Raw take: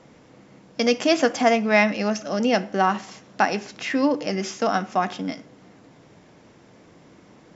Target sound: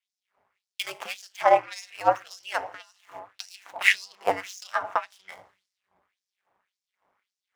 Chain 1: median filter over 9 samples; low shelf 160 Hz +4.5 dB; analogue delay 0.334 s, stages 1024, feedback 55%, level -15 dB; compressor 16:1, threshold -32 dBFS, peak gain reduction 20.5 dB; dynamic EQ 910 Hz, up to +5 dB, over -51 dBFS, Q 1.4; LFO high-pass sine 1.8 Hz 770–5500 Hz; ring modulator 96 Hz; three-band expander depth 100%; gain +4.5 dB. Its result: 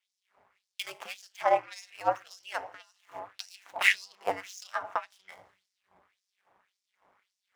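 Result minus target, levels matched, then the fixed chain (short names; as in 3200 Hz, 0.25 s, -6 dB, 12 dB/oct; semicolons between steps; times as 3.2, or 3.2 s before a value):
compressor: peak gain reduction +5.5 dB
median filter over 9 samples; low shelf 160 Hz +4.5 dB; analogue delay 0.334 s, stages 1024, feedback 55%, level -15 dB; compressor 16:1, threshold -26 dBFS, peak gain reduction 15 dB; dynamic EQ 910 Hz, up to +5 dB, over -51 dBFS, Q 1.4; LFO high-pass sine 1.8 Hz 770–5500 Hz; ring modulator 96 Hz; three-band expander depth 100%; gain +4.5 dB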